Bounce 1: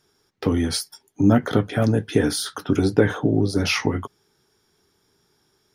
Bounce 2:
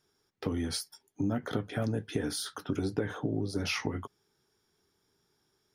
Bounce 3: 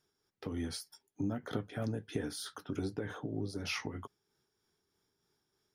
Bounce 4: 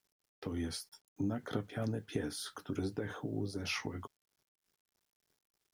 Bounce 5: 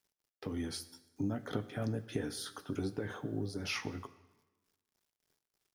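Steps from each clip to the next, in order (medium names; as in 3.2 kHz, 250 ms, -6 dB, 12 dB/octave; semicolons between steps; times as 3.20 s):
compression 5:1, threshold -18 dBFS, peak gain reduction 7.5 dB; trim -9 dB
tremolo 3.2 Hz, depth 37%; trim -4 dB
word length cut 12-bit, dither none
plate-style reverb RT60 1.2 s, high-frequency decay 0.85×, DRR 13.5 dB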